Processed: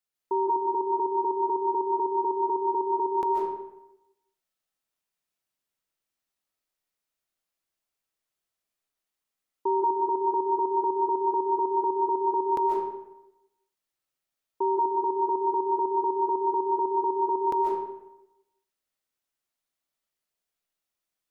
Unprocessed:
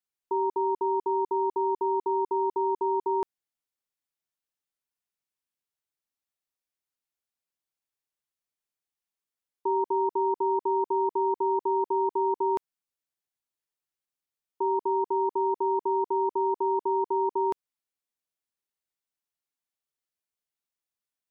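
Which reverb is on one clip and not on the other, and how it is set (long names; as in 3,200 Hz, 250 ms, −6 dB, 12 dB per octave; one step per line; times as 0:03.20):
comb and all-pass reverb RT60 0.93 s, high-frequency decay 0.65×, pre-delay 105 ms, DRR −2.5 dB
level +1 dB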